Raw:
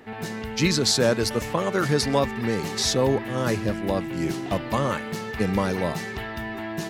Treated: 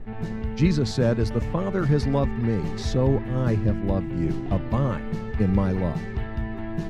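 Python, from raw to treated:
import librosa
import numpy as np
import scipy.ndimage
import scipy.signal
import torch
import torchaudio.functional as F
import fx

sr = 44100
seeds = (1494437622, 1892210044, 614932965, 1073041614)

y = fx.dmg_noise_colour(x, sr, seeds[0], colour='brown', level_db=-48.0)
y = fx.riaa(y, sr, side='playback')
y = y * librosa.db_to_amplitude(-5.5)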